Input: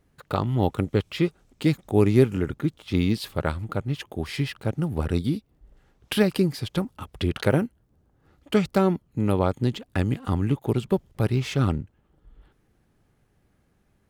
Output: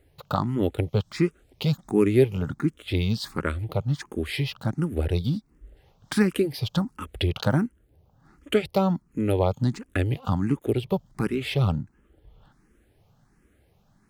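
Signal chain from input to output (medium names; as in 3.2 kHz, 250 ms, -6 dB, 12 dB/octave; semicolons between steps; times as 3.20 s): in parallel at +1 dB: compression, threshold -32 dBFS, peak gain reduction 19 dB; on the sum: barber-pole phaser +1.4 Hz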